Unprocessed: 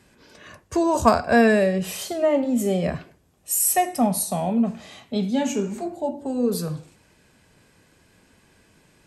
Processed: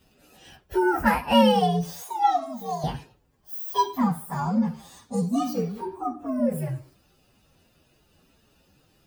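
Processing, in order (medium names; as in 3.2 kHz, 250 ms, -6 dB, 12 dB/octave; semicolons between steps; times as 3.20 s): frequency axis rescaled in octaves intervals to 129%; 2.03–2.84 s: resonant low shelf 550 Hz -12.5 dB, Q 1.5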